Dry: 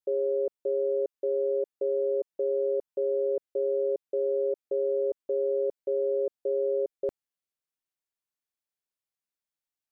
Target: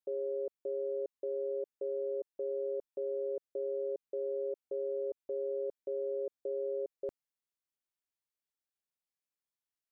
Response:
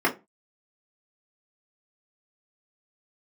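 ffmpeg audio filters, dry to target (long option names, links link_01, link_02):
-af "alimiter=level_in=0.5dB:limit=-24dB:level=0:latency=1:release=38,volume=-0.5dB,volume=-5dB"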